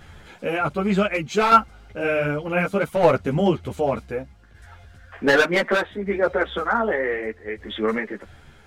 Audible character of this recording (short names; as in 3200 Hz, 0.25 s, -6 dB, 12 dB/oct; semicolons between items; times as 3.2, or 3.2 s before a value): tremolo saw down 0.66 Hz, depth 55%; a shimmering, thickened sound